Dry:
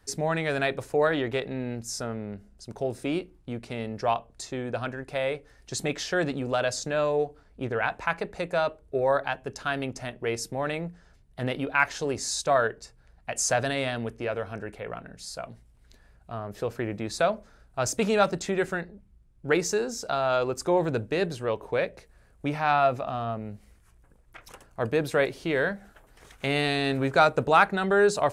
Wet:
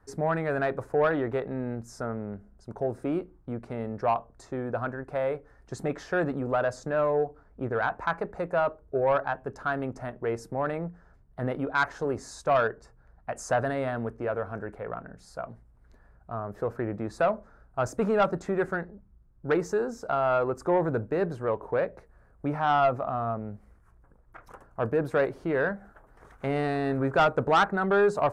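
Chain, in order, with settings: resonant high shelf 2000 Hz -13.5 dB, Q 1.5; soft clip -15 dBFS, distortion -15 dB

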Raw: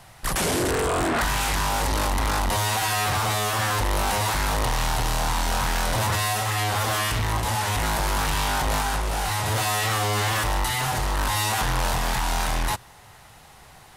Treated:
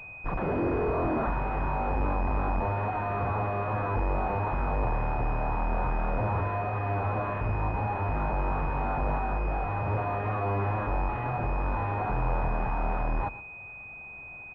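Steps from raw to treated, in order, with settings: echo 0.115 s -17 dB; speed mistake 25 fps video run at 24 fps; pulse-width modulation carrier 2500 Hz; gain -3 dB

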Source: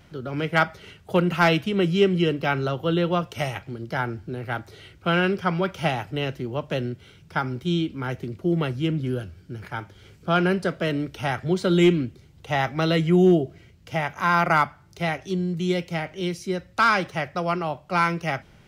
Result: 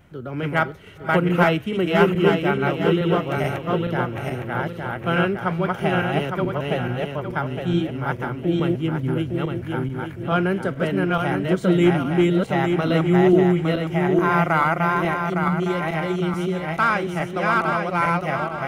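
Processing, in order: regenerating reverse delay 0.43 s, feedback 60%, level -1 dB; bell 4800 Hz -11.5 dB 1 oct

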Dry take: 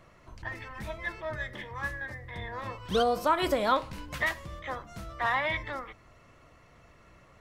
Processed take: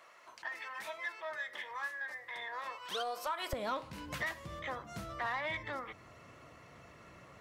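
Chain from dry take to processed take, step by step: HPF 760 Hz 12 dB/oct, from 3.53 s 95 Hz; compressor 2:1, threshold -43 dBFS, peak gain reduction 14.5 dB; soft clip -29.5 dBFS, distortion -17 dB; gain +2.5 dB

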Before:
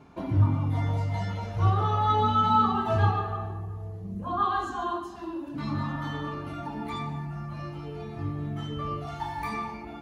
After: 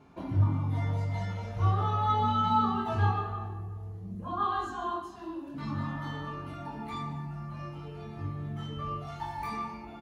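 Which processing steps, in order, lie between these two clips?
doubler 22 ms -5 dB; gain -5 dB

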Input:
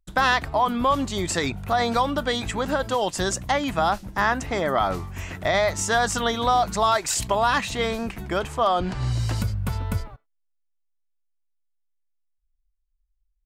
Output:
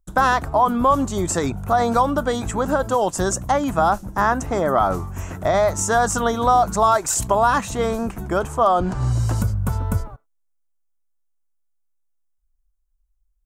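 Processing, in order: band shelf 3000 Hz -11 dB; gain +4.5 dB

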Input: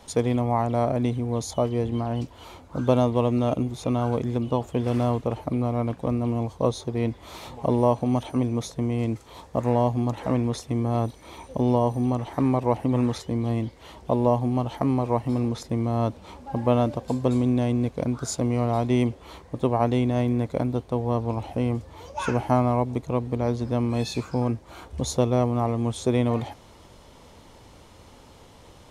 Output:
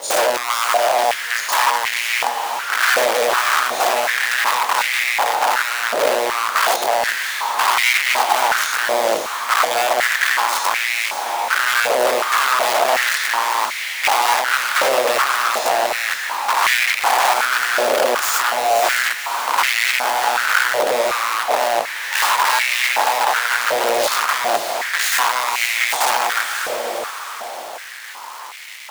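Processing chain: spectral dilation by 0.12 s; 0.77–1.49 expander -16 dBFS; in parallel at 0 dB: compressor 6:1, threshold -27 dBFS, peak gain reduction 14.5 dB; on the sum: bit-crush 6-bit; wrapped overs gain 14.5 dB; on a send: diffused feedback echo 0.551 s, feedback 47%, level -6 dB; on the sum: stepped high-pass 2.7 Hz 560–2100 Hz

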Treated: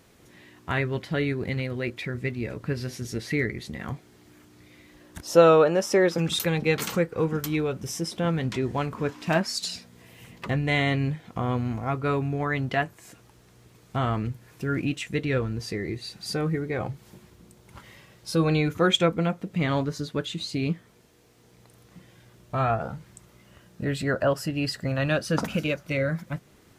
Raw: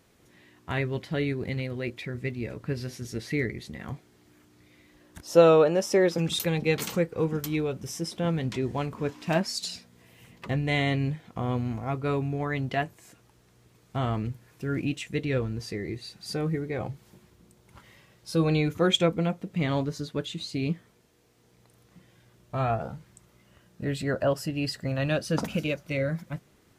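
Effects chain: dynamic EQ 1400 Hz, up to +5 dB, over -46 dBFS, Q 1.5; in parallel at -1.5 dB: compressor, threshold -38 dBFS, peak gain reduction 24 dB

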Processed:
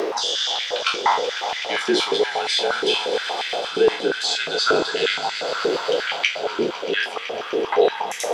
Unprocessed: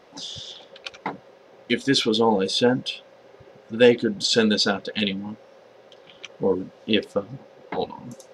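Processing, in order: spectral trails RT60 0.32 s; in parallel at -1.5 dB: upward compressor, threshold -23 dBFS; on the sum: limiter -7.5 dBFS, peak gain reduction 10.5 dB; reverse; compressor, threshold -27 dBFS, peak gain reduction 13.5 dB; reverse; frequency shift -47 Hz; swelling echo 0.126 s, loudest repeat 5, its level -13.5 dB; stepped high-pass 8.5 Hz 380–2000 Hz; gain +6.5 dB

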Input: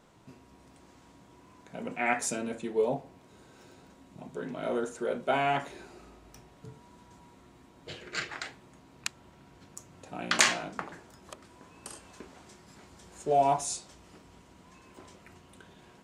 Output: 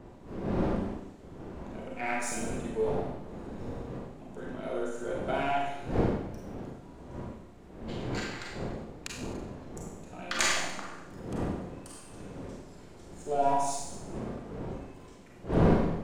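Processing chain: half-wave gain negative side -3 dB; wind noise 370 Hz -34 dBFS; Schroeder reverb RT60 0.89 s, combs from 32 ms, DRR -2 dB; gain -5.5 dB

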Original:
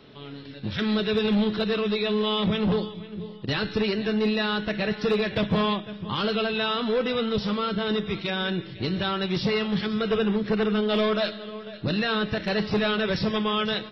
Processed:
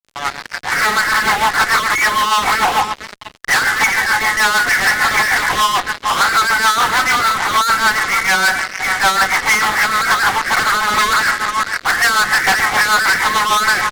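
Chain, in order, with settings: FFT band-pass 700–2300 Hz; fuzz box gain 49 dB, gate -52 dBFS; rotary speaker horn 6.7 Hz; gain +4 dB

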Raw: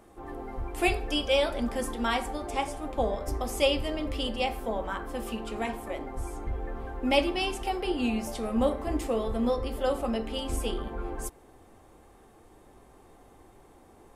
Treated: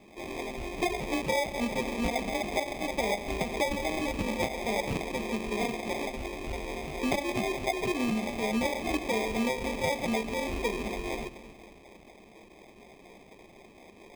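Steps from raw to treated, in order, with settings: low shelf 130 Hz -8 dB; split-band echo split 390 Hz, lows 0.265 s, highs 0.132 s, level -14 dB; LFO low-pass sine 4.1 Hz 560–2600 Hz; sample-and-hold 31×; thirty-one-band EQ 200 Hz +9 dB, 400 Hz +3 dB, 1600 Hz -7 dB, 2500 Hz +11 dB, 12500 Hz -6 dB; compressor 10:1, threshold -25 dBFS, peak gain reduction 11.5 dB

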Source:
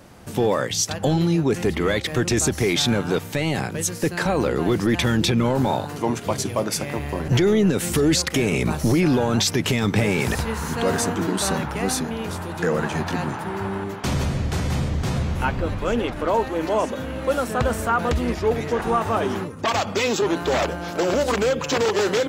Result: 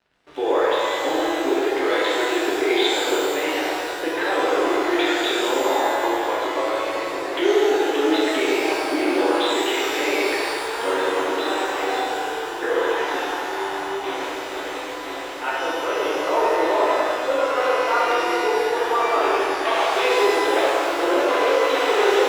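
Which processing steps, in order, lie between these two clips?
brick-wall FIR band-pass 280–4100 Hz; narrowing echo 98 ms, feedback 72%, band-pass 730 Hz, level -6 dB; crossover distortion -43.5 dBFS; shimmer reverb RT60 1.8 s, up +12 st, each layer -8 dB, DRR -6.5 dB; gain -4.5 dB

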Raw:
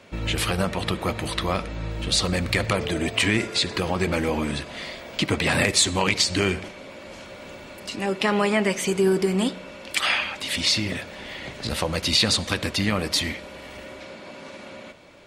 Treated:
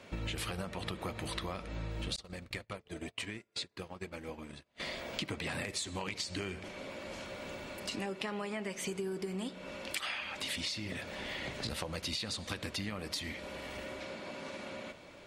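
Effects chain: compressor 12:1, threshold -31 dBFS, peak gain reduction 16.5 dB; 2.16–4.8 gate -33 dBFS, range -35 dB; gain -3.5 dB

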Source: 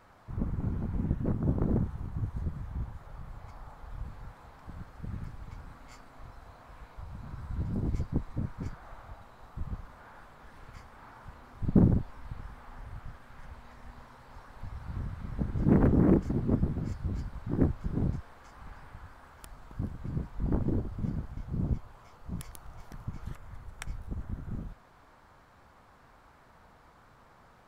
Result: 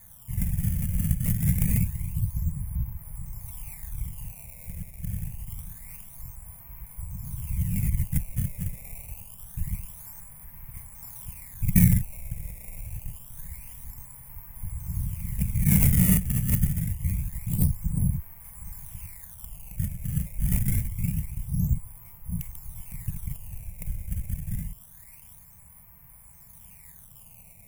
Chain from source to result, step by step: tracing distortion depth 0.33 ms; in parallel at -7 dB: soft clip -26 dBFS, distortion -7 dB; on the sum: bell 990 Hz +9 dB 0.53 oct; decimation with a swept rate 16×, swing 160% 0.26 Hz; EQ curve 180 Hz 0 dB, 320 Hz -27 dB, 520 Hz -17 dB, 1400 Hz -23 dB, 2200 Hz -4 dB, 4000 Hz -21 dB, 11000 Hz +12 dB; gain +4 dB

